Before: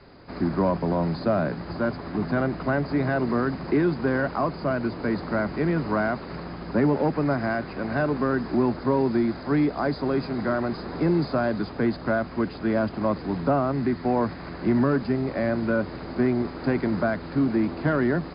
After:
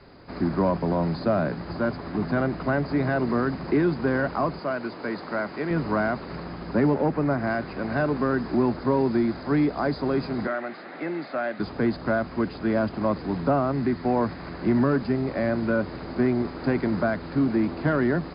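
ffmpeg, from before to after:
-filter_complex "[0:a]asettb=1/sr,asplit=3[a][b][c];[a]atrim=end=4.594[d];[b]atrim=start=4.59:end=5.71,asetpts=PTS-STARTPTS,afade=t=in:d=0.004:c=qsin,afade=t=out:st=1.116:d=0.004:c=qsin,highpass=f=440:p=1[e];[c]atrim=start=5.706[f];[d][e]acrossfade=d=0.004:c1=hsin:c2=qsin[g];[g][f]acrossfade=d=0.004:c1=qsin:c2=hsin,asettb=1/sr,asplit=3[h][i][j];[h]atrim=end=6.944[k];[i]atrim=start=6.94:end=7.47,asetpts=PTS-STARTPTS,afade=t=in:d=0.004:c=qsin,afade=t=out:st=0.526:d=0.004:c=qsin,lowpass=f=2.8k:p=1[l];[j]atrim=start=7.466[m];[k][l]acrossfade=d=0.004:c1=hsin:c2=qsin[n];[n][m]acrossfade=d=0.004:c1=qsin:c2=hsin,asettb=1/sr,asplit=3[o][p][q];[o]atrim=end=10.474[r];[p]atrim=start=10.47:end=11.6,asetpts=PTS-STARTPTS,afade=t=in:d=0.004:c=qsin,afade=t=out:st=1.126:d=0.004:c=qsin,highpass=420,equalizer=f=430:t=q:w=4:g=-9,equalizer=f=1k:t=q:w=4:g=-9,equalizer=f=2k:t=q:w=4:g=5,lowpass=f=3.6k:w=0.5412,lowpass=f=3.6k:w=1.3066[s];[q]atrim=start=11.596[t];[r][s]acrossfade=d=0.004:c1=hsin:c2=qsin[u];[u][t]acrossfade=d=0.004:c1=qsin:c2=hsin"

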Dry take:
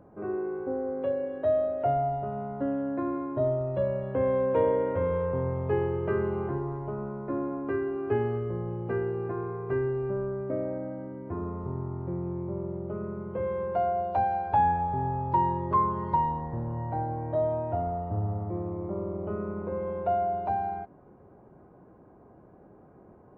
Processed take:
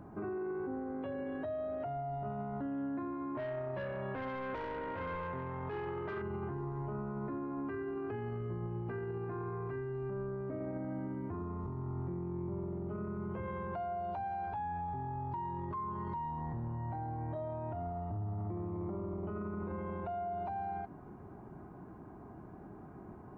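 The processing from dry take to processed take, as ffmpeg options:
-filter_complex "[0:a]asettb=1/sr,asplit=3[a][b][c];[a]atrim=end=3.354[d];[b]atrim=start=3.35:end=6.22,asetpts=PTS-STARTPTS,afade=t=in:d=0.004:c=qsin,afade=t=out:st=2.866:d=0.004:c=qsin,asplit=2[e][f];[f]highpass=f=720:p=1,volume=18dB,asoftclip=type=tanh:threshold=-14dB[g];[e][g]amix=inputs=2:normalize=0,lowpass=f=2.7k:p=1,volume=-6dB[h];[c]atrim=start=6.216[i];[d][h]acrossfade=d=0.004:c1=hsin:c2=qsin[j];[j][i]acrossfade=d=0.004:c1=qsin:c2=hsin,equalizer=f=520:w=3.3:g=-13.5,acompressor=threshold=-35dB:ratio=6,alimiter=level_in=14dB:limit=-24dB:level=0:latency=1:release=23,volume=-14dB,volume=5.5dB"

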